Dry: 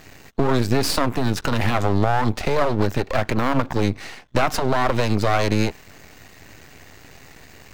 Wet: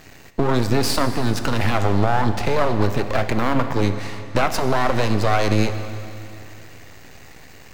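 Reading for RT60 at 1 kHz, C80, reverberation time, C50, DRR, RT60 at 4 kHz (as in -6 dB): 2.8 s, 10.0 dB, 2.8 s, 9.0 dB, 8.5 dB, 2.6 s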